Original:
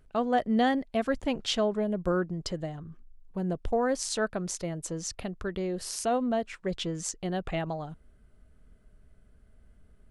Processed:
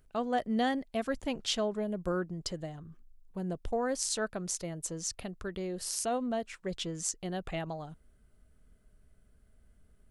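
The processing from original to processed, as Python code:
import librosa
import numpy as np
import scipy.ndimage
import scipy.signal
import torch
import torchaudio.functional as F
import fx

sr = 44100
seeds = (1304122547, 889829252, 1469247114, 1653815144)

y = fx.high_shelf(x, sr, hz=5300.0, db=9.0)
y = y * librosa.db_to_amplitude(-5.0)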